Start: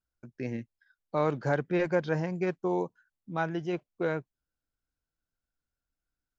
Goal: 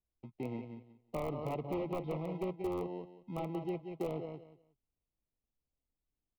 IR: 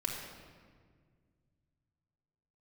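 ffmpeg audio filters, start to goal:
-filter_complex "[0:a]asplit=2[a][b];[b]adelay=180,lowpass=f=4.3k:p=1,volume=-10dB,asplit=2[c][d];[d]adelay=180,lowpass=f=4.3k:p=1,volume=0.2,asplit=2[e][f];[f]adelay=180,lowpass=f=4.3k:p=1,volume=0.2[g];[a][c][e][g]amix=inputs=4:normalize=0,asplit=2[h][i];[i]acrusher=samples=38:mix=1:aa=0.000001,volume=-4dB[j];[h][j]amix=inputs=2:normalize=0,aeval=exprs='0.1*(abs(mod(val(0)/0.1+3,4)-2)-1)':c=same,asuperstop=centerf=1600:order=8:qfactor=2,acrossover=split=310|1900[k][l][m];[k]acompressor=threshold=-36dB:ratio=4[n];[l]acompressor=threshold=-30dB:ratio=4[o];[m]acompressor=threshold=-47dB:ratio=4[p];[n][o][p]amix=inputs=3:normalize=0,acrossover=split=3200[q][r];[r]acrusher=bits=5:mix=0:aa=0.000001[s];[q][s]amix=inputs=2:normalize=0,volume=-5.5dB"

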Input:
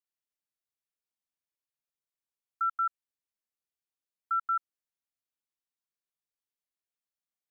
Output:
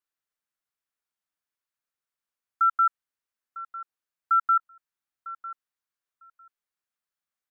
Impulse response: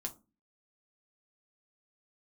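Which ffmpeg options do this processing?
-filter_complex "[0:a]equalizer=f=1.4k:t=o:w=1.2:g=8,asplit=2[a][b];[b]aecho=0:1:951|1902:0.15|0.0224[c];[a][c]amix=inputs=2:normalize=0"

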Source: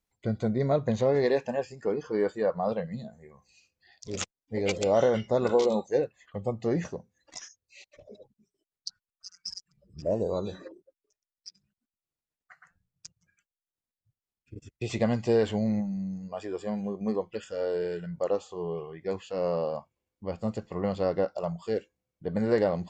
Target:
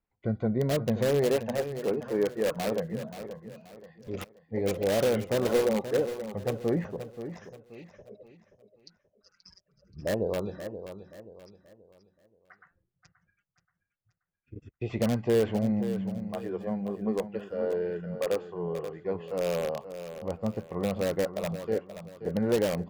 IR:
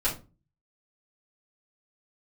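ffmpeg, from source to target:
-filter_complex "[0:a]lowpass=2k,acrossover=split=670[a][b];[b]aeval=exprs='(mod(33.5*val(0)+1,2)-1)/33.5':c=same[c];[a][c]amix=inputs=2:normalize=0,aecho=1:1:529|1058|1587|2116:0.282|0.101|0.0365|0.0131"

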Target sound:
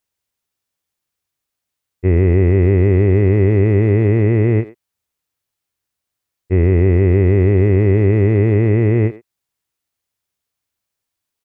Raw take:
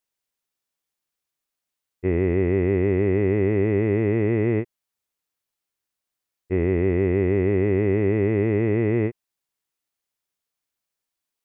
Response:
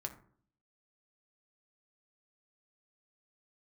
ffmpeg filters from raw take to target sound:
-filter_complex "[0:a]equalizer=f=87:t=o:w=1.3:g=9.5,asplit=2[a][b];[b]adelay=100,highpass=300,lowpass=3.4k,asoftclip=type=hard:threshold=-17dB,volume=-15dB[c];[a][c]amix=inputs=2:normalize=0,volume=4dB"

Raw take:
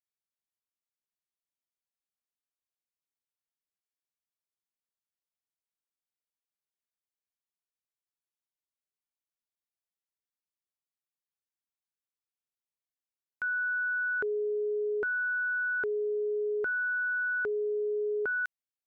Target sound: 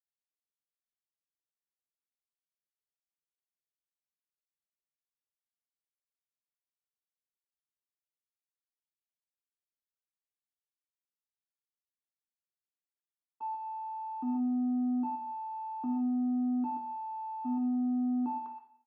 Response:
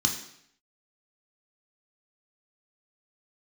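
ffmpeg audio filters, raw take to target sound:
-filter_complex "[0:a]equalizer=f=810:w=3.7:g=-10.5,acrusher=bits=10:mix=0:aa=0.000001,aresample=16000,asoftclip=type=tanh:threshold=-37dB,aresample=44100,lowpass=1.1k,aecho=1:1:124:0.355,asetrate=26222,aresample=44100,atempo=1.68179,highpass=400[a];[1:a]atrim=start_sample=2205,asetrate=48510,aresample=44100[b];[a][b]afir=irnorm=-1:irlink=0"

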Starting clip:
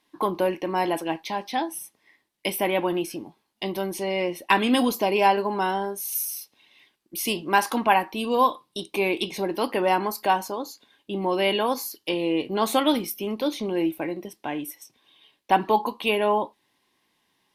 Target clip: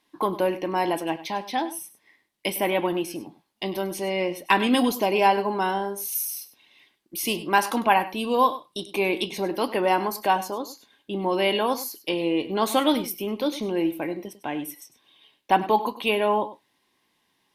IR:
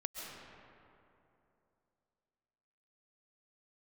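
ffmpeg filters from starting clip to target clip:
-filter_complex "[0:a]asplit=2[a][b];[1:a]atrim=start_sample=2205,atrim=end_sample=3528,adelay=100[c];[b][c]afir=irnorm=-1:irlink=0,volume=-12dB[d];[a][d]amix=inputs=2:normalize=0"

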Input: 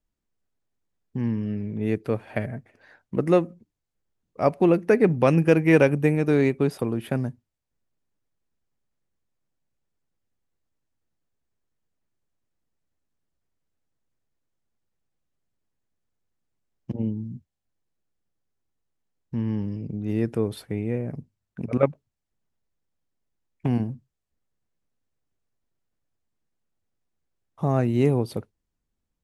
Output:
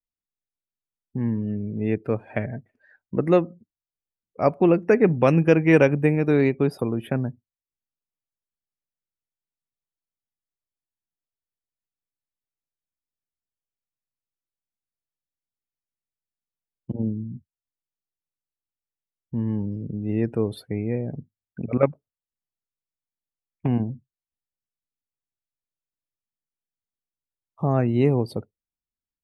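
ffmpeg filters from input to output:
-af "afftdn=nr=19:nf=-46,volume=1dB"

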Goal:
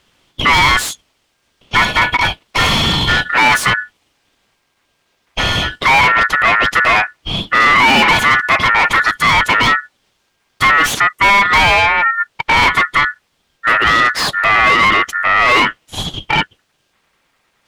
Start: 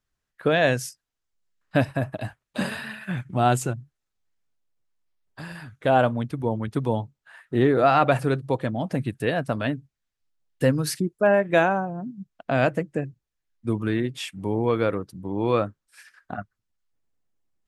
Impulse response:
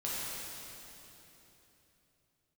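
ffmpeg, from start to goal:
-filter_complex "[0:a]asplit=2[a][b];[b]highpass=f=720:p=1,volume=37dB,asoftclip=type=tanh:threshold=-6dB[c];[a][c]amix=inputs=2:normalize=0,lowpass=f=2.1k:p=1,volume=-6dB,aeval=exprs='val(0)*sin(2*PI*1600*n/s)':c=same,volume=5.5dB"

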